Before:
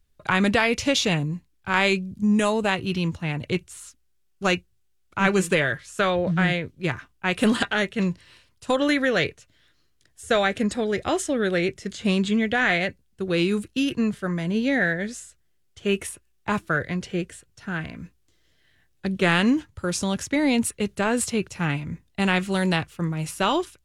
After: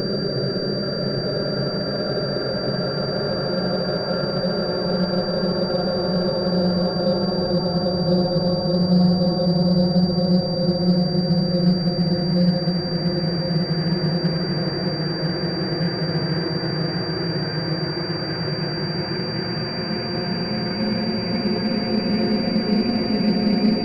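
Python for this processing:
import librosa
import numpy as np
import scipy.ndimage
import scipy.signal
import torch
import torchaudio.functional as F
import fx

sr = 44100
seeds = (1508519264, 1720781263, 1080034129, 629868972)

p1 = fx.local_reverse(x, sr, ms=147.0)
p2 = fx.env_lowpass_down(p1, sr, base_hz=420.0, full_db=-19.5)
p3 = fx.paulstretch(p2, sr, seeds[0], factor=14.0, window_s=1.0, from_s=5.63)
p4 = p3 + fx.echo_single(p3, sr, ms=801, db=-7.5, dry=0)
p5 = fx.pwm(p4, sr, carrier_hz=4700.0)
y = p5 * 10.0 ** (4.5 / 20.0)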